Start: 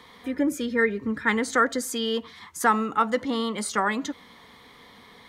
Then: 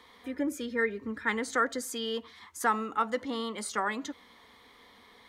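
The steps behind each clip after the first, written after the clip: bell 150 Hz -14 dB 0.52 oct; gain -6 dB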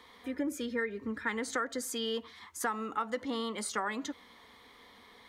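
compressor 6:1, threshold -29 dBFS, peak gain reduction 8.5 dB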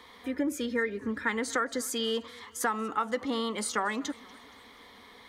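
warbling echo 0.238 s, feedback 58%, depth 162 cents, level -23.5 dB; gain +4 dB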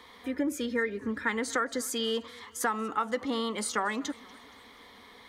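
nothing audible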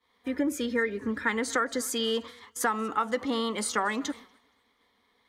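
expander -40 dBFS; gain +2 dB

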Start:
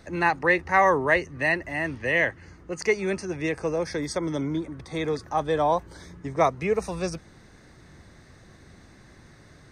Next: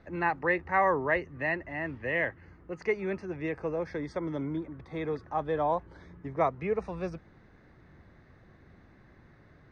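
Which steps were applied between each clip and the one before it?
LPF 2300 Hz 12 dB/oct; gain -5.5 dB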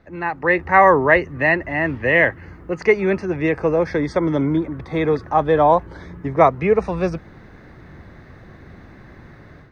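AGC gain up to 12 dB; gain +2.5 dB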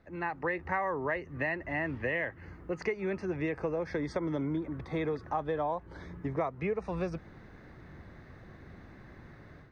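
compressor 10:1, threshold -20 dBFS, peak gain reduction 13 dB; gain -8.5 dB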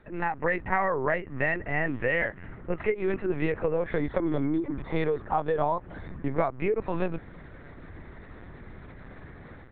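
LPC vocoder at 8 kHz pitch kept; gain +6 dB

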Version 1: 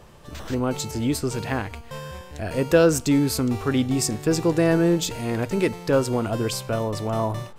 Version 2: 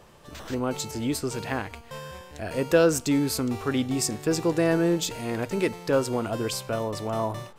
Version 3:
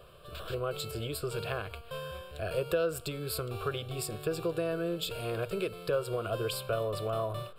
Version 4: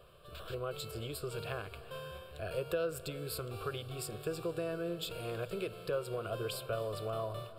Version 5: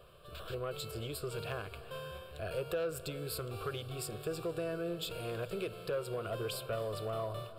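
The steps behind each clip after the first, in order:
low shelf 160 Hz -7 dB; gain -2 dB
compressor 6:1, threshold -26 dBFS, peak gain reduction 11.5 dB; fixed phaser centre 1300 Hz, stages 8; gain +1 dB
reverb RT60 4.3 s, pre-delay 0.211 s, DRR 14 dB; gain -5 dB
soft clip -28 dBFS, distortion -20 dB; gain +1 dB

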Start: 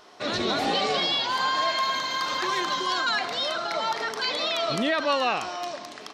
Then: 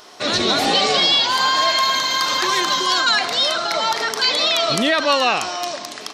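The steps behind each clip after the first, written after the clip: high shelf 4300 Hz +10.5 dB; gain +6 dB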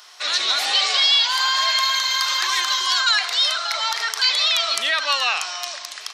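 HPF 1300 Hz 12 dB/oct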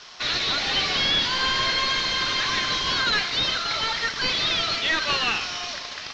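CVSD 32 kbps; dynamic EQ 880 Hz, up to -6 dB, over -38 dBFS, Q 0.96; flange 1.4 Hz, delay 3.8 ms, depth 7.6 ms, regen -72%; gain +6 dB

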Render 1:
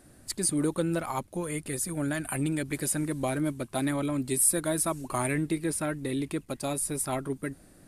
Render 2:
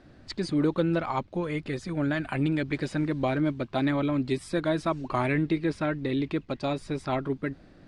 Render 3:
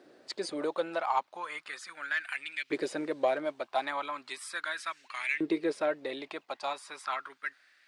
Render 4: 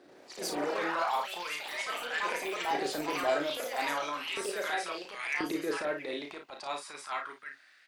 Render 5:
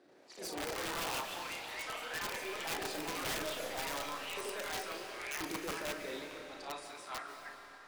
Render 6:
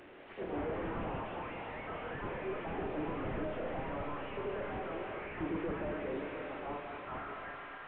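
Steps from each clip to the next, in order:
LPF 4500 Hz 24 dB/oct; gain +3 dB
LFO high-pass saw up 0.37 Hz 380–2400 Hz; high shelf 7400 Hz +11.5 dB; in parallel at -9 dB: soft clip -20.5 dBFS, distortion -14 dB; on the sum: gain -6.5 dB
transient shaper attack -12 dB, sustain +2 dB; echoes that change speed 82 ms, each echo +4 st, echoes 3; on a send: early reflections 34 ms -5.5 dB, 55 ms -9.5 dB
wrapped overs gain 25.5 dB; on a send at -5 dB: reverb RT60 4.2 s, pre-delay 0.105 s; on the sum: gain -7 dB
delta modulation 16 kbps, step -55 dBFS; gain +7 dB

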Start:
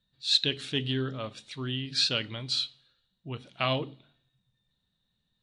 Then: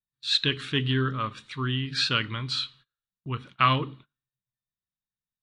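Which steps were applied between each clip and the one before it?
gate -52 dBFS, range -27 dB; EQ curve 130 Hz 0 dB, 190 Hz -2 dB, 410 Hz -4 dB, 700 Hz -13 dB, 1100 Hz +7 dB, 4900 Hz -9 dB; gain +6.5 dB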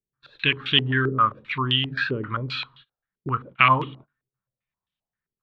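in parallel at +1 dB: compressor, threshold -33 dBFS, peak gain reduction 16 dB; on the sum: stepped low-pass 7.6 Hz 400–3200 Hz; gain -2 dB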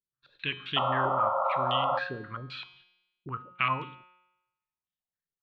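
painted sound noise, 0.76–1.99, 510–1400 Hz -17 dBFS; resonator 180 Hz, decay 0.95 s, mix 70%; gain -1.5 dB

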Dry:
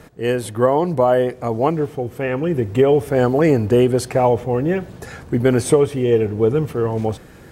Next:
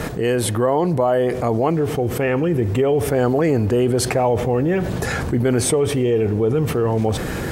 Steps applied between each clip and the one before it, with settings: fast leveller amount 70%; gain -6 dB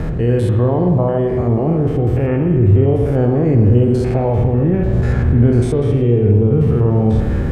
stepped spectrum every 0.1 s; RIAA curve playback; spring tank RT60 1.5 s, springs 50 ms, chirp 75 ms, DRR 4.5 dB; gain -2.5 dB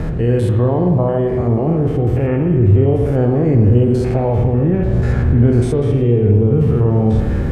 Vorbis 64 kbps 32000 Hz

